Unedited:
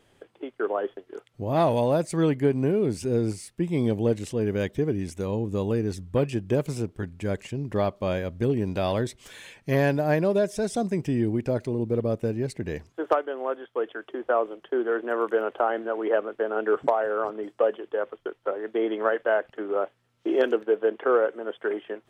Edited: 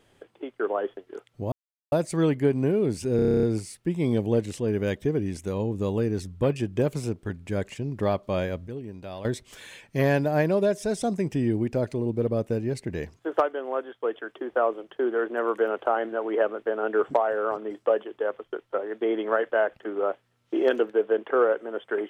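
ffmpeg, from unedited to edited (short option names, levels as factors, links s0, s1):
-filter_complex "[0:a]asplit=14[s0][s1][s2][s3][s4][s5][s6][s7][s8][s9][s10][s11][s12][s13];[s0]atrim=end=1.52,asetpts=PTS-STARTPTS,afade=t=out:st=1.516:d=0.004:c=hsin[s14];[s1]atrim=start=1.52:end=1.92,asetpts=PTS-STARTPTS,volume=0[s15];[s2]atrim=start=1.92:end=3.192,asetpts=PTS-STARTPTS,afade=t=in:d=0.004:c=hsin[s16];[s3]atrim=start=3.158:end=3.192[s17];[s4]atrim=start=3.158:end=3.192[s18];[s5]atrim=start=3.158:end=3.192[s19];[s6]atrim=start=3.158:end=3.192[s20];[s7]atrim=start=3.158:end=3.192[s21];[s8]atrim=start=3.158:end=3.192[s22];[s9]atrim=start=3.158:end=3.192[s23];[s10]atrim=start=3.158:end=3.192[s24];[s11]atrim=start=3.158:end=8.402[s25];[s12]atrim=start=8.398:end=8.982,asetpts=PTS-STARTPTS,volume=0.251[s26];[s13]atrim=start=8.978[s27];[s14][s15][s16]concat=n=3:v=0:a=1[s28];[s28][s17]acrossfade=d=0.004:c1=hsin:c2=hsin[s29];[s29][s18]acrossfade=d=0.004:c1=hsin:c2=hsin[s30];[s30][s19]acrossfade=d=0.004:c1=hsin:c2=hsin[s31];[s31][s20]acrossfade=d=0.004:c1=hsin:c2=hsin[s32];[s32][s21]acrossfade=d=0.004:c1=hsin:c2=hsin[s33];[s33][s22]acrossfade=d=0.004:c1=hsin:c2=hsin[s34];[s34][s23]acrossfade=d=0.004:c1=hsin:c2=hsin[s35];[s35][s24]acrossfade=d=0.004:c1=hsin:c2=hsin[s36];[s36][s25]acrossfade=d=0.004:c1=hsin:c2=hsin[s37];[s37][s26]acrossfade=d=0.004:c1=hsin:c2=hsin[s38];[s38][s27]acrossfade=d=0.004:c1=hsin:c2=hsin"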